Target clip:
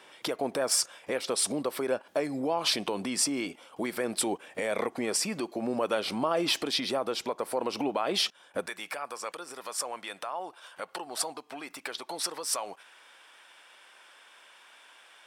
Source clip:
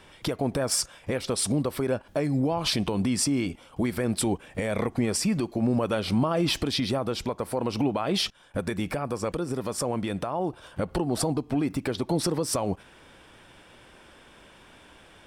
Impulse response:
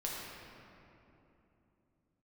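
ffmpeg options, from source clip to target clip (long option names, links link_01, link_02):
-af "asetnsamples=nb_out_samples=441:pad=0,asendcmd='8.66 highpass f 920',highpass=380"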